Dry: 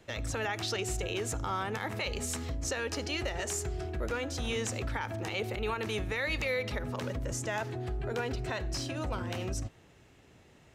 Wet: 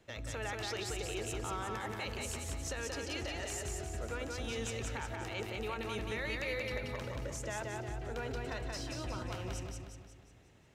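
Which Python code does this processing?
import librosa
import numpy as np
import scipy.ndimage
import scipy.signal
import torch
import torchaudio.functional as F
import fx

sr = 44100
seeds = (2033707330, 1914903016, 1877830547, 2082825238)

y = fx.echo_feedback(x, sr, ms=180, feedback_pct=49, wet_db=-3.0)
y = y * 10.0 ** (-7.0 / 20.0)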